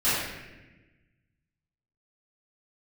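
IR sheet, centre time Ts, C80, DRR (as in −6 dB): 94 ms, 1.0 dB, −16.0 dB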